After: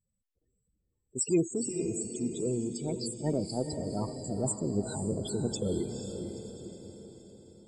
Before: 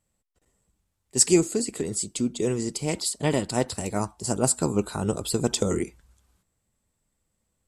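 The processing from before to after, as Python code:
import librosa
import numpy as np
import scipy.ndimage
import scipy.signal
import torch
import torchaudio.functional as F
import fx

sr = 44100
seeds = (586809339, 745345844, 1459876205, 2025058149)

y = fx.spec_topn(x, sr, count=16)
y = fx.transient(y, sr, attack_db=-4, sustain_db=3)
y = fx.echo_diffused(y, sr, ms=479, feedback_pct=51, wet_db=-6.5)
y = y * librosa.db_to_amplitude(-5.0)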